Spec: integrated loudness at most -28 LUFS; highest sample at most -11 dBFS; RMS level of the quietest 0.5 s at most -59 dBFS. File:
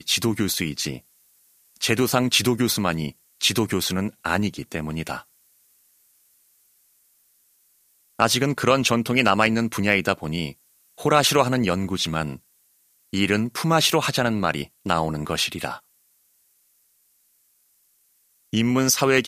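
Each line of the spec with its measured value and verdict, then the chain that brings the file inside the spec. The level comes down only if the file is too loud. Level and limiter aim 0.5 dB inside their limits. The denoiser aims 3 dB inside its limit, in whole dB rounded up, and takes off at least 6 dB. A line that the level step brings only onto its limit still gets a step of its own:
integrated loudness -22.0 LUFS: fail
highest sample -4.0 dBFS: fail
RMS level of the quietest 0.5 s -64 dBFS: OK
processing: gain -6.5 dB; limiter -11.5 dBFS

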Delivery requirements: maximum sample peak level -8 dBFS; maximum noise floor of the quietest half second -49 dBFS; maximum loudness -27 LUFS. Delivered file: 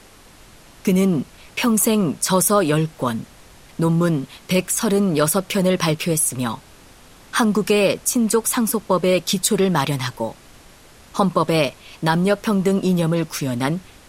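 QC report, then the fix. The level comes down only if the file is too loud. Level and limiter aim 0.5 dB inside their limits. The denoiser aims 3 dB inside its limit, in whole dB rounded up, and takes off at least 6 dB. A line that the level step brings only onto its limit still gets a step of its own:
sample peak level -4.0 dBFS: fail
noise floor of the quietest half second -46 dBFS: fail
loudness -19.5 LUFS: fail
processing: gain -8 dB

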